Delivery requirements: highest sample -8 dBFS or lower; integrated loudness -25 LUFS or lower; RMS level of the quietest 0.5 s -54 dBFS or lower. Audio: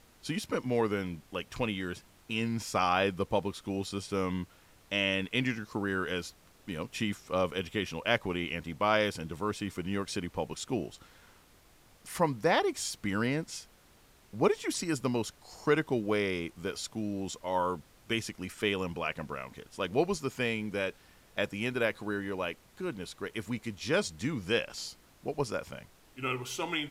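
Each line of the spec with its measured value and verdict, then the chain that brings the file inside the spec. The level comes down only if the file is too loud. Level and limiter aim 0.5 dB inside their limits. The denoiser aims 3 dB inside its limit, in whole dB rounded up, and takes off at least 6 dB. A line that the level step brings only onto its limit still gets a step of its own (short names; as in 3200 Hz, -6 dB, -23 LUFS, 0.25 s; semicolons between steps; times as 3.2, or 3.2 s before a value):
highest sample -11.5 dBFS: OK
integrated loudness -33.0 LUFS: OK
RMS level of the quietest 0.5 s -61 dBFS: OK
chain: none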